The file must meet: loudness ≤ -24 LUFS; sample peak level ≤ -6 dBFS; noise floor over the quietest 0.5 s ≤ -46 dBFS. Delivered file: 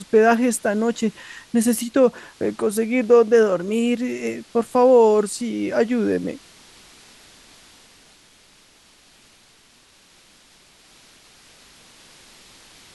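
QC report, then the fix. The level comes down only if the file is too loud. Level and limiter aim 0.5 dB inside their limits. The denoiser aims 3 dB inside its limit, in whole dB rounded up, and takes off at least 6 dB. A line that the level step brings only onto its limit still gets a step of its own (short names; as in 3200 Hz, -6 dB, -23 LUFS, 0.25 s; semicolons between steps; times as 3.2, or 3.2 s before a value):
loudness -19.5 LUFS: fail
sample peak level -4.5 dBFS: fail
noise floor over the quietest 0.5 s -54 dBFS: OK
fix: gain -5 dB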